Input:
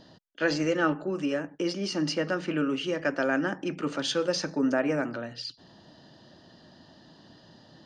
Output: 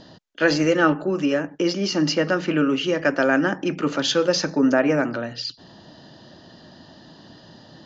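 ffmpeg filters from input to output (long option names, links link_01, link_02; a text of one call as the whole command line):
ffmpeg -i in.wav -af "aresample=16000,aresample=44100,volume=7.5dB" out.wav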